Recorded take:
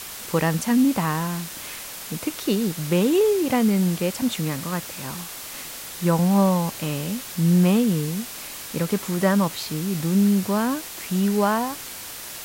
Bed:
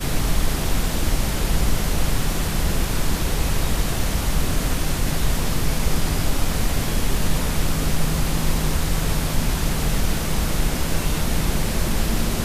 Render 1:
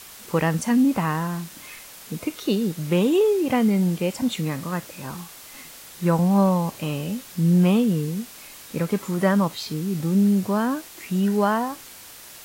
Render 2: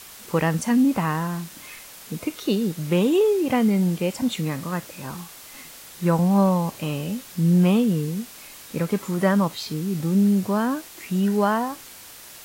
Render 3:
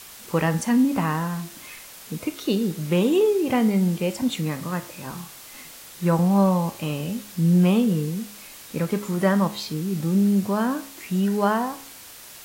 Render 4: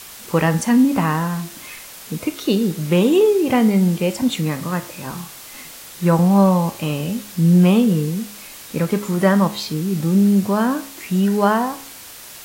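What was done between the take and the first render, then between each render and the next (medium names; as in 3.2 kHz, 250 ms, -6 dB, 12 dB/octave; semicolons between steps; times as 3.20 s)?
noise print and reduce 7 dB
no audible change
de-hum 68.9 Hz, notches 32
trim +5 dB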